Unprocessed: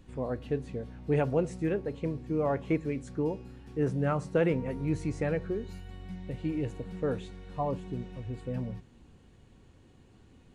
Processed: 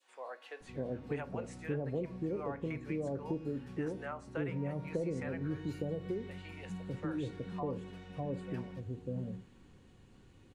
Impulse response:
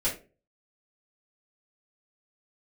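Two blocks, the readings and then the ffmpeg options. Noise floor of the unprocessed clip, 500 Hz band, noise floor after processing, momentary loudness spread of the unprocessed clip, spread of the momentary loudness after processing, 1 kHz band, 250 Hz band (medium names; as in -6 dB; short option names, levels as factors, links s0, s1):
-58 dBFS, -7.5 dB, -60 dBFS, 12 LU, 9 LU, -7.5 dB, -6.0 dB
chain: -filter_complex "[0:a]acrossover=split=650[s0][s1];[s0]adelay=600[s2];[s2][s1]amix=inputs=2:normalize=0,adynamicequalizer=threshold=0.00398:dfrequency=1400:dqfactor=0.72:tfrequency=1400:tqfactor=0.72:attack=5:release=100:ratio=0.375:range=2.5:mode=boostabove:tftype=bell,asplit=2[s3][s4];[1:a]atrim=start_sample=2205[s5];[s4][s5]afir=irnorm=-1:irlink=0,volume=0.0891[s6];[s3][s6]amix=inputs=2:normalize=0,acrossover=split=88|570[s7][s8][s9];[s7]acompressor=threshold=0.001:ratio=4[s10];[s8]acompressor=threshold=0.0224:ratio=4[s11];[s9]acompressor=threshold=0.00631:ratio=4[s12];[s10][s11][s12]amix=inputs=3:normalize=0,volume=0.794"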